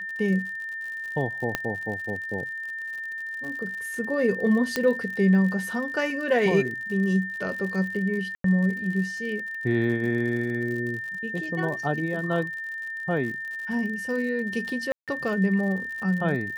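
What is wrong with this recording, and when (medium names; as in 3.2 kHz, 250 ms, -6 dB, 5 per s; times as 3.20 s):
crackle 70 per s -34 dBFS
whine 1.8 kHz -31 dBFS
1.55 s: pop -10 dBFS
4.76 s: pop -10 dBFS
8.35–8.44 s: dropout 93 ms
14.92–15.08 s: dropout 157 ms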